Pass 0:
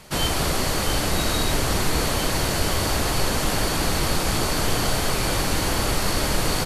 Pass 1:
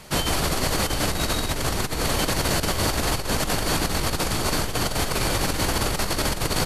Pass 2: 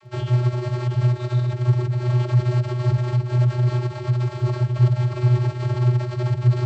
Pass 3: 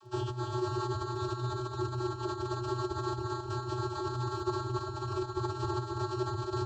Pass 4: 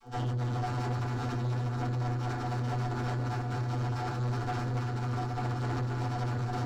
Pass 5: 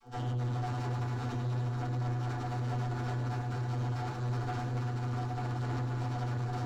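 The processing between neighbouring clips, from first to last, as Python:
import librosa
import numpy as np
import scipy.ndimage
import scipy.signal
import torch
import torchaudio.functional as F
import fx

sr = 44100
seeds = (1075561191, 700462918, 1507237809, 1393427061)

y1 = fx.over_compress(x, sr, threshold_db=-23.0, ratio=-0.5)
y2 = fx.vocoder(y1, sr, bands=32, carrier='square', carrier_hz=123.0)
y2 = fx.dmg_crackle(y2, sr, seeds[0], per_s=39.0, level_db=-48.0)
y2 = fx.bass_treble(y2, sr, bass_db=8, treble_db=-6)
y3 = fx.over_compress(y2, sr, threshold_db=-22.0, ratio=-1.0)
y3 = fx.fixed_phaser(y3, sr, hz=570.0, stages=6)
y3 = fx.echo_feedback(y3, sr, ms=272, feedback_pct=57, wet_db=-4.0)
y3 = F.gain(torch.from_numpy(y3), -3.0).numpy()
y4 = fx.lower_of_two(y3, sr, delay_ms=6.8)
y4 = fx.rev_fdn(y4, sr, rt60_s=0.37, lf_ratio=1.6, hf_ratio=0.45, size_ms=25.0, drr_db=-2.0)
y4 = 10.0 ** (-28.0 / 20.0) * np.tanh(y4 / 10.0 ** (-28.0 / 20.0))
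y5 = y4 + 10.0 ** (-8.0 / 20.0) * np.pad(y4, (int(106 * sr / 1000.0), 0))[:len(y4)]
y5 = F.gain(torch.from_numpy(y5), -4.0).numpy()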